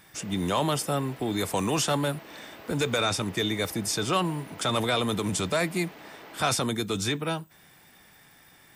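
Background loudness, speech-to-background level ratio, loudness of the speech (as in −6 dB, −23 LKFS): −46.5 LKFS, 19.0 dB, −27.5 LKFS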